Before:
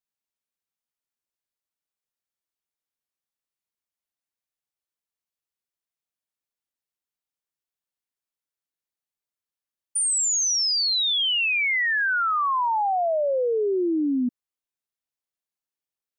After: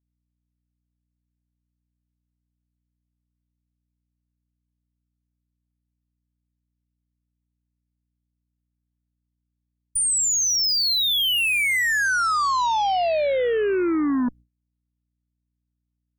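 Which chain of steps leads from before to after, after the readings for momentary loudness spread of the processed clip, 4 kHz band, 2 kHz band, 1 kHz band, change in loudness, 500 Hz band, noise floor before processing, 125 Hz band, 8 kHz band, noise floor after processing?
4 LU, +1.5 dB, +1.5 dB, +1.5 dB, +1.5 dB, +1.5 dB, below −85 dBFS, can't be measured, +1.5 dB, −79 dBFS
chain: mains hum 60 Hz, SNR 26 dB
harmonic generator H 2 −22 dB, 4 −13 dB, 6 −25 dB, 7 −25 dB, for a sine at −19.5 dBFS
noise gate with hold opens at −46 dBFS
level +1.5 dB

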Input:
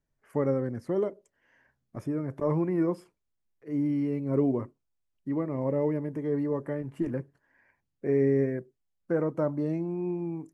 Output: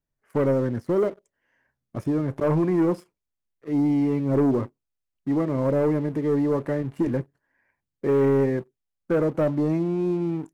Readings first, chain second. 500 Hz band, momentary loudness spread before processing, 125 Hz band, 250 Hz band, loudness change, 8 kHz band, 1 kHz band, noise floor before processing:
+5.5 dB, 10 LU, +5.5 dB, +6.0 dB, +5.5 dB, can't be measured, +7.0 dB, −80 dBFS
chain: leveller curve on the samples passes 2

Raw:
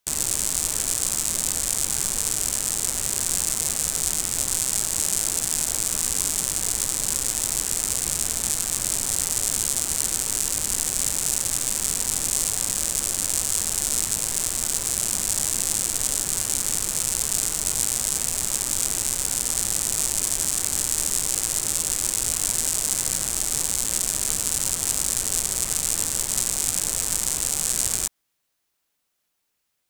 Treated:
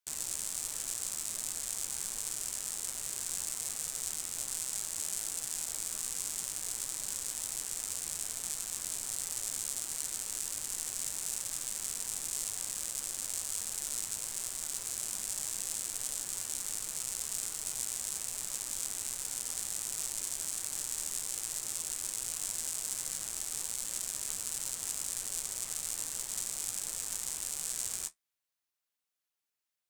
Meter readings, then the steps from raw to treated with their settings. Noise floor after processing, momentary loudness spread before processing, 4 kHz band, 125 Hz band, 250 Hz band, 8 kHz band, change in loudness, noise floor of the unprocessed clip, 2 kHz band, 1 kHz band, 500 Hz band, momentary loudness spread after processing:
below −85 dBFS, 1 LU, −12.5 dB, −19.5 dB, −18.5 dB, −12.5 dB, −12.5 dB, −76 dBFS, −13.0 dB, −14.0 dB, −16.0 dB, 1 LU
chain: low-shelf EQ 480 Hz −7.5 dB
flanger 1.3 Hz, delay 5.7 ms, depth 8.1 ms, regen −50%
level −8.5 dB

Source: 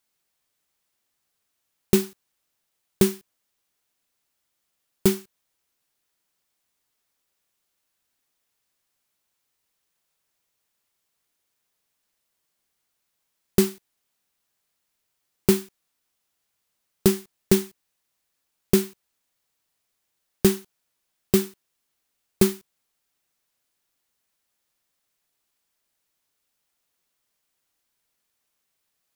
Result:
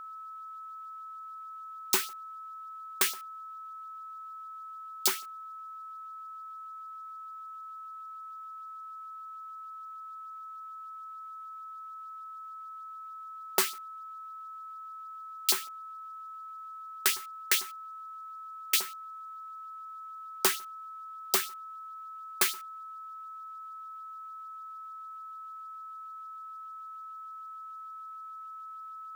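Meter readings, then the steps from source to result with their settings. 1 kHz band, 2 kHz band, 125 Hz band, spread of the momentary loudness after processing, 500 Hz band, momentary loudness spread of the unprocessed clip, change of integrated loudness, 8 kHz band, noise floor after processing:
+11.0 dB, +3.5 dB, below −30 dB, 15 LU, −18.0 dB, 13 LU, −12.0 dB, +1.0 dB, −44 dBFS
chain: auto-filter high-pass saw up 6.7 Hz 820–5,100 Hz
steady tone 1,300 Hz −41 dBFS

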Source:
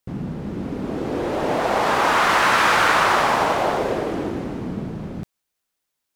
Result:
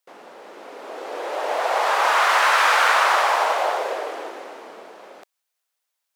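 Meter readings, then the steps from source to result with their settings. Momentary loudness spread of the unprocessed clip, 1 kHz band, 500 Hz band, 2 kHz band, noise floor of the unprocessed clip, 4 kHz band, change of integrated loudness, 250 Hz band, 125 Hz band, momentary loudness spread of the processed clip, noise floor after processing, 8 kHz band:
14 LU, 0.0 dB, −3.0 dB, 0.0 dB, −80 dBFS, 0.0 dB, +1.5 dB, −19.0 dB, below −40 dB, 19 LU, −80 dBFS, 0.0 dB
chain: high-pass filter 520 Hz 24 dB per octave

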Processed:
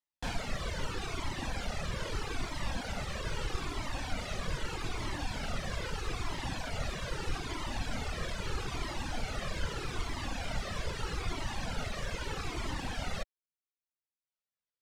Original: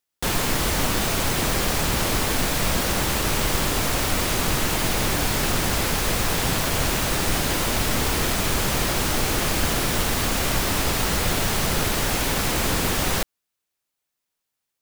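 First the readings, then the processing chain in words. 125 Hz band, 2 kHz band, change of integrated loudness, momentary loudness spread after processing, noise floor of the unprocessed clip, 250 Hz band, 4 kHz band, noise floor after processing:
−12.5 dB, −14.0 dB, −16.0 dB, 1 LU, −82 dBFS, −15.5 dB, −16.0 dB, below −85 dBFS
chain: high-frequency loss of the air 87 metres
reverb reduction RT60 1 s
flanger whose copies keep moving one way falling 0.79 Hz
level −6.5 dB

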